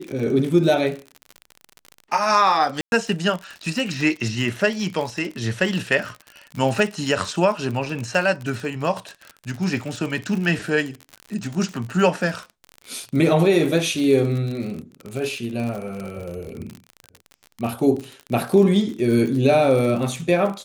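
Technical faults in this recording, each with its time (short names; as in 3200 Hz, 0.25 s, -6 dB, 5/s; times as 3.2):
crackle 49/s -27 dBFS
2.81–2.92 gap 0.111 s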